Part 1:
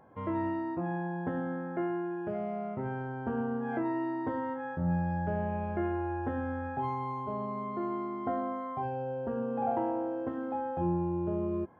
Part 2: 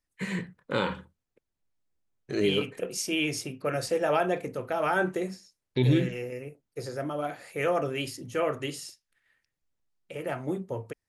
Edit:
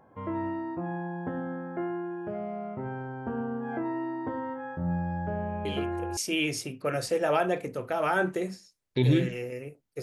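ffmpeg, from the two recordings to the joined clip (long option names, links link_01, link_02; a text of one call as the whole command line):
ffmpeg -i cue0.wav -i cue1.wav -filter_complex "[1:a]asplit=2[link_01][link_02];[0:a]apad=whole_dur=10.02,atrim=end=10.02,atrim=end=6.172[link_03];[link_02]atrim=start=2.968:end=6.82[link_04];[link_01]atrim=start=2.45:end=2.97,asetpts=PTS-STARTPTS,volume=-9dB,afade=type=in:duration=0.004:curve=hsin,afade=type=out:start_time=0.516:duration=0.004:curve=hsin,adelay=249165S[link_05];[link_03][link_04]acrossfade=duration=0.004:curve1=hsin:curve2=hsin[link_06];[link_06][link_05]amix=inputs=2:normalize=0" out.wav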